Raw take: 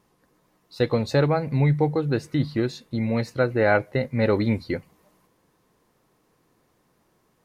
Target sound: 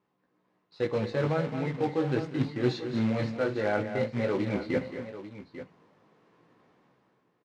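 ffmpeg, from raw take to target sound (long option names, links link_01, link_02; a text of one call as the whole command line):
ffmpeg -i in.wav -filter_complex "[0:a]agate=range=-9dB:threshold=-57dB:ratio=16:detection=peak,dynaudnorm=framelen=110:gausssize=11:maxgain=13dB,alimiter=limit=-4.5dB:level=0:latency=1:release=383,areverse,acompressor=threshold=-24dB:ratio=8,areverse,flanger=delay=15.5:depth=3.9:speed=0.43,acrusher=bits=3:mode=log:mix=0:aa=0.000001,highpass=130,lowpass=3000,asplit=2[link_01][link_02];[link_02]aecho=0:1:63|190|220|257|844:0.133|0.119|0.282|0.158|0.224[link_03];[link_01][link_03]amix=inputs=2:normalize=0,volume=2dB" out.wav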